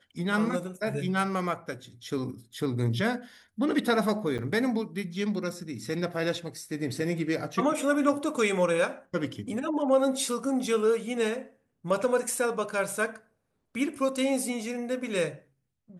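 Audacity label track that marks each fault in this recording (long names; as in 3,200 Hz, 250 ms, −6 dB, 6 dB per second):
4.380000	4.390000	drop-out 7.5 ms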